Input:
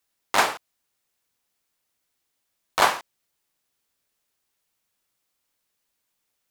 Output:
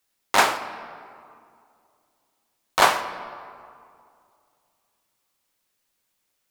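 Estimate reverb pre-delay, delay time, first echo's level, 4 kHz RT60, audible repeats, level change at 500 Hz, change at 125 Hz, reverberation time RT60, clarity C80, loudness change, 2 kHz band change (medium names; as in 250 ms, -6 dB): 5 ms, no echo, no echo, 1.3 s, no echo, +2.5 dB, +3.0 dB, 2.4 s, 12.5 dB, +1.0 dB, +2.5 dB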